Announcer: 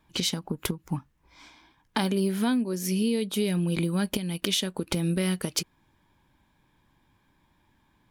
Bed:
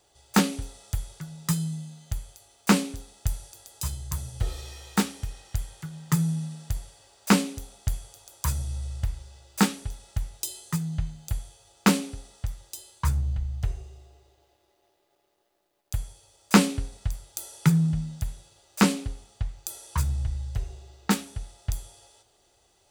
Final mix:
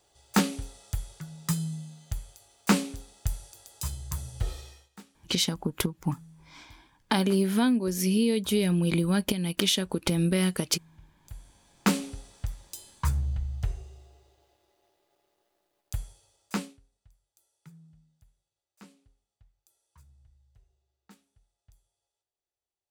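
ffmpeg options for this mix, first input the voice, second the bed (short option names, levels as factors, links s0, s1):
-filter_complex "[0:a]adelay=5150,volume=1.19[s0];[1:a]volume=11.2,afade=t=out:st=4.51:d=0.38:silence=0.0707946,afade=t=in:st=11.15:d=0.94:silence=0.0668344,afade=t=out:st=15.77:d=1.02:silence=0.0316228[s1];[s0][s1]amix=inputs=2:normalize=0"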